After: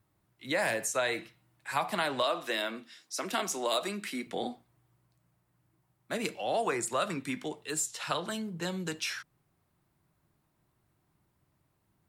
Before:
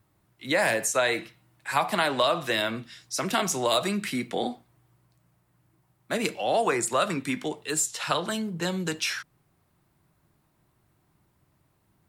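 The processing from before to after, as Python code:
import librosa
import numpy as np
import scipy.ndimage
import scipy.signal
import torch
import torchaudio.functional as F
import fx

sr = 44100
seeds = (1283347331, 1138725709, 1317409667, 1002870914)

y = fx.highpass(x, sr, hz=220.0, slope=24, at=(2.23, 4.27))
y = y * 10.0 ** (-6.0 / 20.0)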